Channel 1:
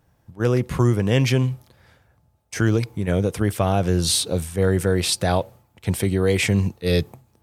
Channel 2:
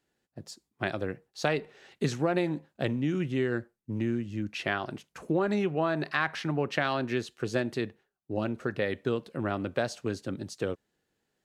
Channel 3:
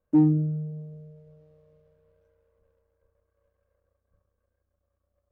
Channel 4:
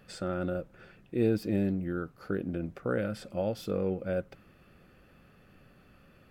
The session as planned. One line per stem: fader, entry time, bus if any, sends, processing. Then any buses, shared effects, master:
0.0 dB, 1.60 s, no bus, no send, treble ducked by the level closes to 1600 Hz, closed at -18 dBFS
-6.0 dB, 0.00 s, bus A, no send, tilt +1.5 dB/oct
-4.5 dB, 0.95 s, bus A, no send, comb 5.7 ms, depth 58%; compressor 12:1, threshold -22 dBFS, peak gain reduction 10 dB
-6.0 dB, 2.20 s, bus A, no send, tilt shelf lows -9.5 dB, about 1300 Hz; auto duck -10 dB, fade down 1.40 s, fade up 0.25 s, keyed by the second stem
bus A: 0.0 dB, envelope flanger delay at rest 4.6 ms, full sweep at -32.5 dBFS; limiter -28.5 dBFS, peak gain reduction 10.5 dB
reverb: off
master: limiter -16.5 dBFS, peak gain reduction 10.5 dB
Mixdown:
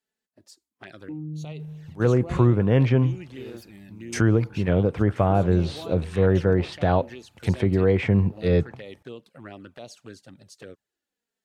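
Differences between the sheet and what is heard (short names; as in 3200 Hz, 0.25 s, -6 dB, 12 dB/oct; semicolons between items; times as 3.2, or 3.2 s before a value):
stem 4 -6.0 dB -> +3.0 dB; master: missing limiter -16.5 dBFS, peak gain reduction 10.5 dB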